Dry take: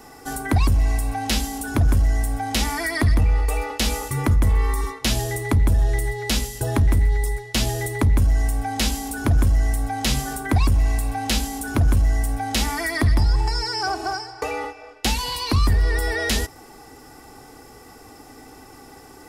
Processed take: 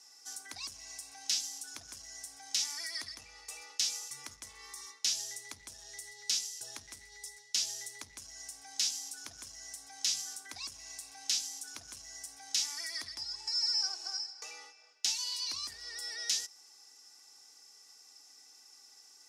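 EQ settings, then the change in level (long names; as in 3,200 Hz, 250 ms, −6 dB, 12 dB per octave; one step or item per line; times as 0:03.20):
resonant band-pass 5,800 Hz, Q 3.1
0.0 dB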